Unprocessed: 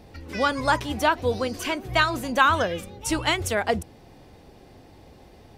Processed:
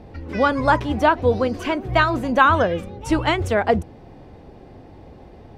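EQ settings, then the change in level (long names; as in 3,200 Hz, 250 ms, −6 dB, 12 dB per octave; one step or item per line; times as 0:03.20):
low-pass filter 1,200 Hz 6 dB per octave
+7.0 dB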